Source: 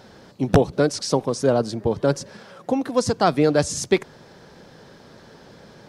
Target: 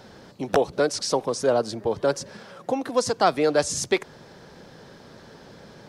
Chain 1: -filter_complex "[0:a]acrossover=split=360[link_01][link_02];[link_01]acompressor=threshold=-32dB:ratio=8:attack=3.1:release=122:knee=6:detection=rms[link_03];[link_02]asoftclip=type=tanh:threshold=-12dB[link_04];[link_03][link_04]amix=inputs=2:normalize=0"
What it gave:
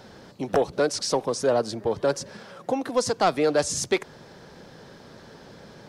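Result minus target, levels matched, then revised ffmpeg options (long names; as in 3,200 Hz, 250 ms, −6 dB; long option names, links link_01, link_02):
soft clipping: distortion +15 dB
-filter_complex "[0:a]acrossover=split=360[link_01][link_02];[link_01]acompressor=threshold=-32dB:ratio=8:attack=3.1:release=122:knee=6:detection=rms[link_03];[link_02]asoftclip=type=tanh:threshold=-2dB[link_04];[link_03][link_04]amix=inputs=2:normalize=0"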